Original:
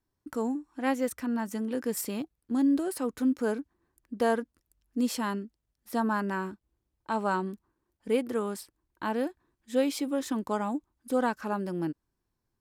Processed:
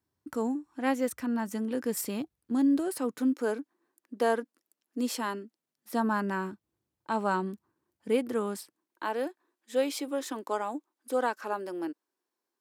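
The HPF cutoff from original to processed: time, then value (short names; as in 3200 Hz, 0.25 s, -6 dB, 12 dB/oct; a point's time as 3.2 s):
HPF 24 dB/oct
2.82 s 69 Hz
3.35 s 250 Hz
5.43 s 250 Hz
6.31 s 94 Hz
8.38 s 94 Hz
9.05 s 310 Hz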